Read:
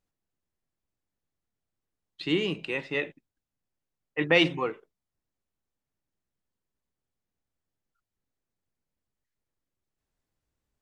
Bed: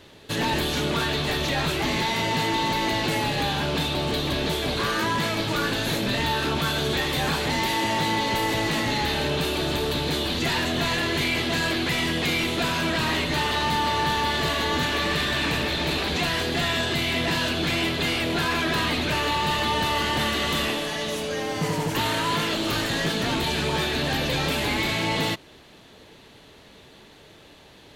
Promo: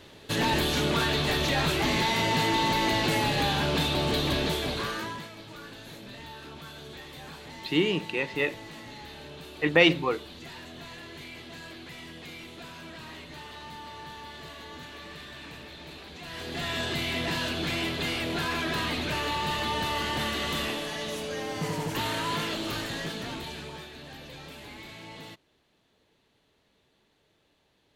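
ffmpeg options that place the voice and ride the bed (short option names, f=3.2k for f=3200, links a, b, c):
-filter_complex "[0:a]adelay=5450,volume=2dB[a];[1:a]volume=12.5dB,afade=t=out:st=4.32:d=0.97:silence=0.125893,afade=t=in:st=16.21:d=0.63:silence=0.211349,afade=t=out:st=22.39:d=1.51:silence=0.199526[b];[a][b]amix=inputs=2:normalize=0"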